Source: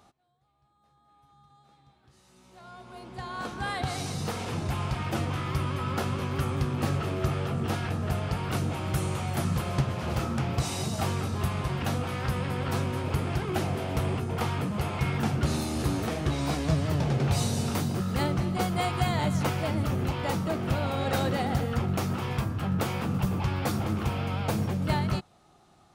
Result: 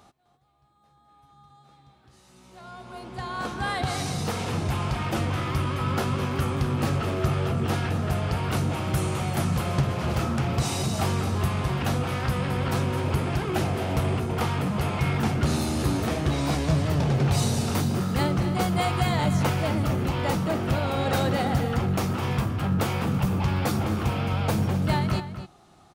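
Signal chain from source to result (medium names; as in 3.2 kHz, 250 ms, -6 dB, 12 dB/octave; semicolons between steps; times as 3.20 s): in parallel at -4 dB: saturation -26.5 dBFS, distortion -12 dB; on the sum: echo from a far wall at 44 m, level -11 dB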